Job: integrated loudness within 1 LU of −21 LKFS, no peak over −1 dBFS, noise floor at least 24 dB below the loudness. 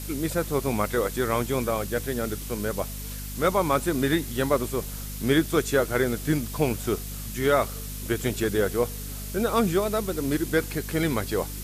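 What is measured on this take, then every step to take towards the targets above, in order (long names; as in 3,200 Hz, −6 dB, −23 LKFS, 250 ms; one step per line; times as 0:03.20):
mains hum 50 Hz; hum harmonics up to 250 Hz; level of the hum −34 dBFS; background noise floor −35 dBFS; target noise floor −51 dBFS; integrated loudness −26.5 LKFS; sample peak −9.0 dBFS; target loudness −21.0 LKFS
→ mains-hum notches 50/100/150/200/250 Hz
broadband denoise 16 dB, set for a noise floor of −35 dBFS
level +5.5 dB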